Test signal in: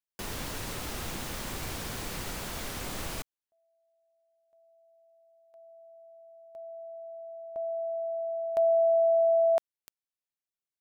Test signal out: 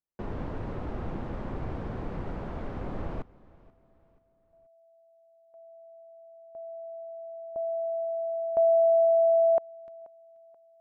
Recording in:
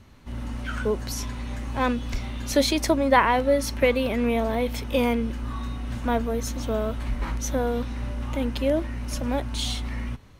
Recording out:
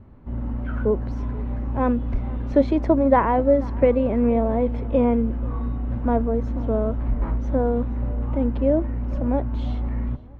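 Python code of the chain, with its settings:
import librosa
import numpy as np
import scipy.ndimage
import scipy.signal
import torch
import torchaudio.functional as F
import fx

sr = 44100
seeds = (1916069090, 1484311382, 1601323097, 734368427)

p1 = scipy.signal.sosfilt(scipy.signal.bessel(2, 710.0, 'lowpass', norm='mag', fs=sr, output='sos'), x)
p2 = p1 + fx.echo_feedback(p1, sr, ms=482, feedback_pct=39, wet_db=-22.0, dry=0)
y = p2 * librosa.db_to_amplitude(5.0)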